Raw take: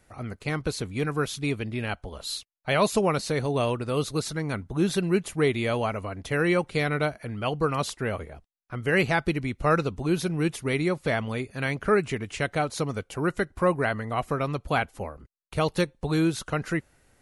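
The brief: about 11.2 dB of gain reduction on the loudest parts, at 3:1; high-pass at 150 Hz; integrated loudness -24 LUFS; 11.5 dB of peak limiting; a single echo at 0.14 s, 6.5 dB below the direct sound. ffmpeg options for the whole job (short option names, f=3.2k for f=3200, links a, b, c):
-af "highpass=150,acompressor=threshold=-33dB:ratio=3,alimiter=level_in=4.5dB:limit=-24dB:level=0:latency=1,volume=-4.5dB,aecho=1:1:140:0.473,volume=15dB"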